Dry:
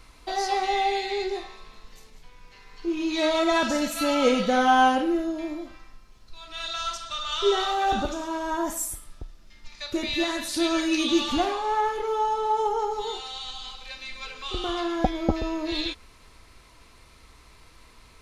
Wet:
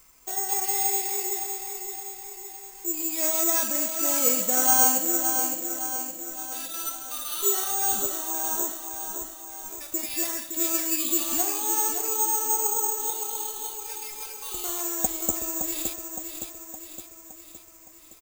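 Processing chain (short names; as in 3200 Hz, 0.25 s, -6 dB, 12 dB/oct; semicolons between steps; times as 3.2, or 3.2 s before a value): low shelf 140 Hz -9 dB; feedback echo 0.565 s, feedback 55%, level -7 dB; careless resampling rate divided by 6×, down filtered, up zero stuff; gain -8.5 dB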